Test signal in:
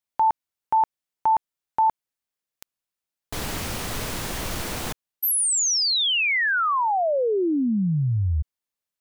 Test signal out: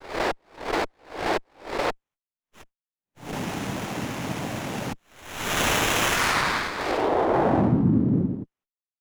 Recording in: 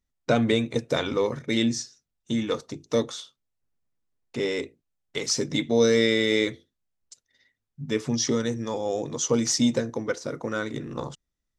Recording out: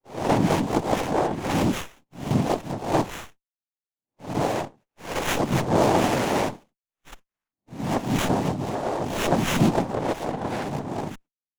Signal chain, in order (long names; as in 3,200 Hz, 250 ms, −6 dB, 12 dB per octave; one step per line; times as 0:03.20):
peak hold with a rise ahead of every peak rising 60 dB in 0.44 s
noise gate −52 dBFS, range −32 dB
parametric band 1,100 Hz −15 dB 0.71 octaves
in parallel at +0.5 dB: downward compressor, threshold −33 dBFS
on the sum: cochlear-implant simulation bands 4
windowed peak hold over 9 samples